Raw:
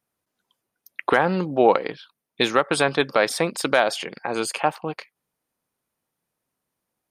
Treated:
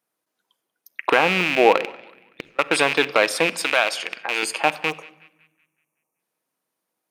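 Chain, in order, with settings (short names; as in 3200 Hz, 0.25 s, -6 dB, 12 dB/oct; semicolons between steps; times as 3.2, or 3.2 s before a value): rattling part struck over -35 dBFS, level -11 dBFS; HPF 250 Hz 12 dB/oct; 1.83–2.59 flipped gate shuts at -20 dBFS, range -37 dB; 3.59–4.43 low shelf 470 Hz -11.5 dB; 4.9–6.19 spectral delete 1300–5500 Hz; on a send: narrowing echo 0.188 s, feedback 46%, band-pass 2000 Hz, level -20 dB; on the sum: shoebox room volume 3800 m³, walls furnished, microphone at 0.6 m; gain +1 dB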